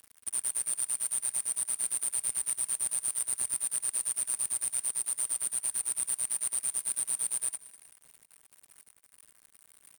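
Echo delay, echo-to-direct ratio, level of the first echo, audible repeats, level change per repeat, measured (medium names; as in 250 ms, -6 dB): 197 ms, -20.0 dB, -21.0 dB, 2, -6.5 dB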